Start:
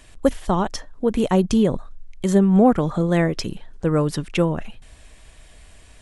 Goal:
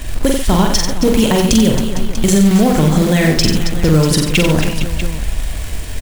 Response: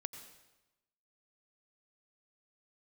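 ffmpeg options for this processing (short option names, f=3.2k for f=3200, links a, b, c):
-filter_complex "[0:a]lowshelf=f=210:g=10,bandreject=f=1.2k:w=12,acrossover=split=2300[a][b];[a]acompressor=threshold=-25dB:ratio=12[c];[c][b]amix=inputs=2:normalize=0,acrusher=bits=4:mode=log:mix=0:aa=0.000001,asplit=2[d][e];[e]aecho=0:1:45|91|141|272|456|642:0.562|0.422|0.188|0.251|0.178|0.2[f];[d][f]amix=inputs=2:normalize=0,alimiter=level_in=17dB:limit=-1dB:release=50:level=0:latency=1,volume=-1dB"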